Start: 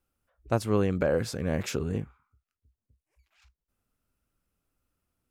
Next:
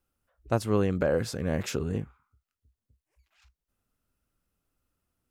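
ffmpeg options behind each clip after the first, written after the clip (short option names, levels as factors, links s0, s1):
-af "bandreject=f=2300:w=24"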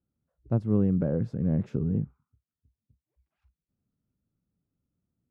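-af "bandpass=f=160:t=q:w=1.5:csg=0,volume=2.24"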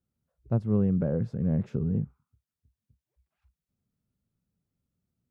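-af "equalizer=f=300:t=o:w=0.27:g=-7.5"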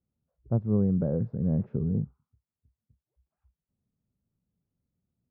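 -af "lowpass=1000"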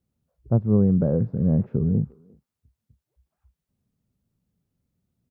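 -filter_complex "[0:a]asplit=2[s0][s1];[s1]adelay=350,highpass=300,lowpass=3400,asoftclip=type=hard:threshold=0.0531,volume=0.0708[s2];[s0][s2]amix=inputs=2:normalize=0,volume=2"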